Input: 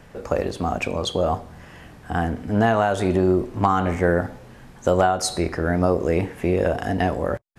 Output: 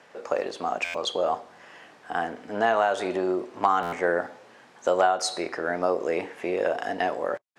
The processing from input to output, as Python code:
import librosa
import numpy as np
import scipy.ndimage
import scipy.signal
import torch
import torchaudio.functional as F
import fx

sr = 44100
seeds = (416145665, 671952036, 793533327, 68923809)

y = fx.bandpass_edges(x, sr, low_hz=450.0, high_hz=7200.0)
y = fx.buffer_glitch(y, sr, at_s=(0.84, 3.82), block=512, repeats=8)
y = y * librosa.db_to_amplitude(-1.5)